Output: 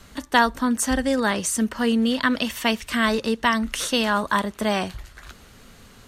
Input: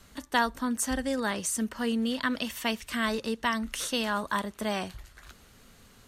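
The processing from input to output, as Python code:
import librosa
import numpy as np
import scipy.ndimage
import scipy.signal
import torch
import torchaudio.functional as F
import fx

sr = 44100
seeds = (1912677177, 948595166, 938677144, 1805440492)

y = fx.high_shelf(x, sr, hz=7200.0, db=-4.5)
y = y * librosa.db_to_amplitude(8.0)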